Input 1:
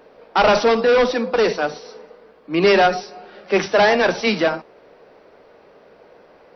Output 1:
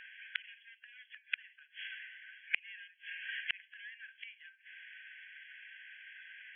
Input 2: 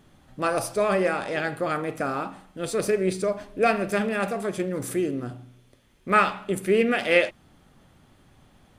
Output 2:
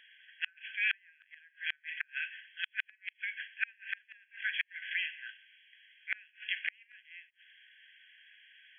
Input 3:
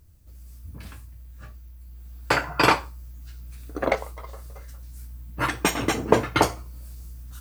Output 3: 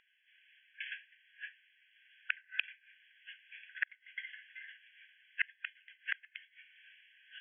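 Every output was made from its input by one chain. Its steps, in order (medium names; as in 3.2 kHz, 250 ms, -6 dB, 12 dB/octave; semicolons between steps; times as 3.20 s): brick-wall FIR band-pass 1.5–3.4 kHz; inverted gate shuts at -27 dBFS, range -37 dB; trim +9.5 dB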